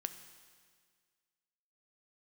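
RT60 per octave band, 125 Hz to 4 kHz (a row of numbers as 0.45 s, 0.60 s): 1.9 s, 1.9 s, 1.9 s, 1.8 s, 1.8 s, 1.8 s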